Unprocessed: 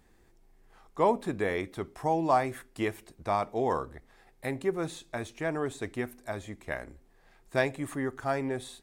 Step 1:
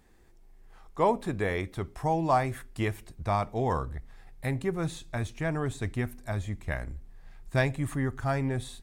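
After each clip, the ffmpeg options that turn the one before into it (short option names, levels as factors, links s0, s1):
-af "asubboost=boost=5.5:cutoff=150,volume=1.12"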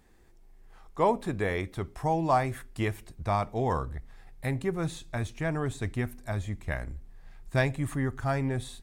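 -af anull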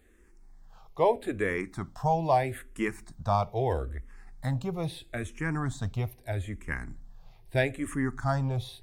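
-filter_complex "[0:a]asplit=2[s0][s1];[s1]afreqshift=-0.78[s2];[s0][s2]amix=inputs=2:normalize=1,volume=1.33"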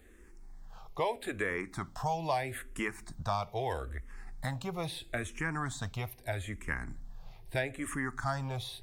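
-filter_complex "[0:a]acrossover=split=740|1500[s0][s1][s2];[s0]acompressor=threshold=0.00891:ratio=4[s3];[s1]acompressor=threshold=0.01:ratio=4[s4];[s2]acompressor=threshold=0.00794:ratio=4[s5];[s3][s4][s5]amix=inputs=3:normalize=0,volume=1.5"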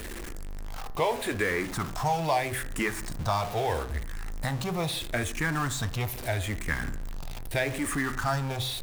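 -af "aeval=exprs='val(0)+0.5*0.0141*sgn(val(0))':c=same,bandreject=f=64.93:t=h:w=4,bandreject=f=129.86:t=h:w=4,bandreject=f=194.79:t=h:w=4,bandreject=f=259.72:t=h:w=4,bandreject=f=324.65:t=h:w=4,bandreject=f=389.58:t=h:w=4,bandreject=f=454.51:t=h:w=4,bandreject=f=519.44:t=h:w=4,bandreject=f=584.37:t=h:w=4,bandreject=f=649.3:t=h:w=4,bandreject=f=714.23:t=h:w=4,bandreject=f=779.16:t=h:w=4,bandreject=f=844.09:t=h:w=4,bandreject=f=909.02:t=h:w=4,bandreject=f=973.95:t=h:w=4,bandreject=f=1038.88:t=h:w=4,bandreject=f=1103.81:t=h:w=4,bandreject=f=1168.74:t=h:w=4,bandreject=f=1233.67:t=h:w=4,bandreject=f=1298.6:t=h:w=4,bandreject=f=1363.53:t=h:w=4,bandreject=f=1428.46:t=h:w=4,bandreject=f=1493.39:t=h:w=4,bandreject=f=1558.32:t=h:w=4,bandreject=f=1623.25:t=h:w=4,bandreject=f=1688.18:t=h:w=4,bandreject=f=1753.11:t=h:w=4,bandreject=f=1818.04:t=h:w=4,bandreject=f=1882.97:t=h:w=4,bandreject=f=1947.9:t=h:w=4,volume=1.68"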